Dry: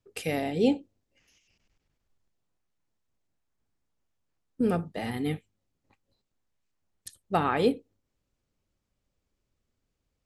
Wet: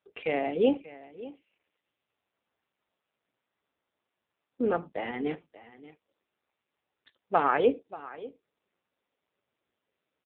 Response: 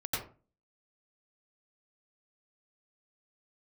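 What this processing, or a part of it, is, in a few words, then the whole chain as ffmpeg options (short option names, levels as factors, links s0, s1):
satellite phone: -af "highpass=360,lowpass=3000,aecho=1:1:584:0.133,volume=1.58" -ar 8000 -c:a libopencore_amrnb -b:a 5900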